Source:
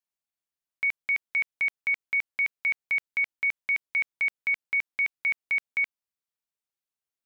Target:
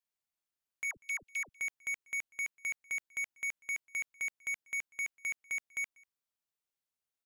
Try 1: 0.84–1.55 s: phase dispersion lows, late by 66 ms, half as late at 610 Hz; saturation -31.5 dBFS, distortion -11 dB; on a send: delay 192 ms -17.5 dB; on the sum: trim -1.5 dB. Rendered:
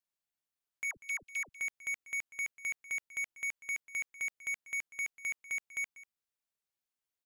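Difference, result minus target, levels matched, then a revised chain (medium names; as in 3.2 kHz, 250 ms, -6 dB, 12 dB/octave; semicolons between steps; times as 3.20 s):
echo-to-direct +9 dB
0.84–1.55 s: phase dispersion lows, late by 66 ms, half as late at 610 Hz; saturation -31.5 dBFS, distortion -11 dB; on a send: delay 192 ms -26.5 dB; on the sum: trim -1.5 dB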